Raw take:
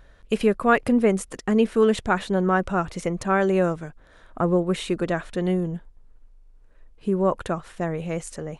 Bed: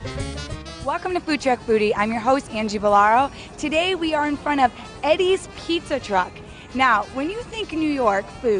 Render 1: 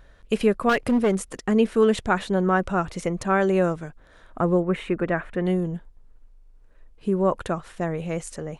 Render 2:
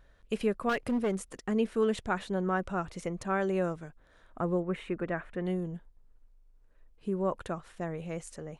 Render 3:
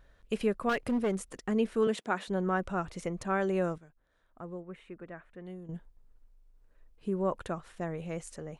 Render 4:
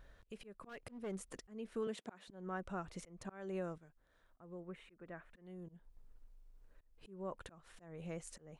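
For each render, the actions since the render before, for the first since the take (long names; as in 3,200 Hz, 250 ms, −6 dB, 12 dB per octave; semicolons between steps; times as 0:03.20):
0:00.69–0:01.33: hard clipping −16 dBFS; 0:04.62–0:05.46: high shelf with overshoot 3,100 Hz −12.5 dB, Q 1.5
level −9 dB
0:01.87–0:02.28: high-pass filter 200 Hz 24 dB per octave; 0:03.78–0:05.69: clip gain −12 dB
downward compressor 2 to 1, threshold −47 dBFS, peak gain reduction 13.5 dB; volume swells 259 ms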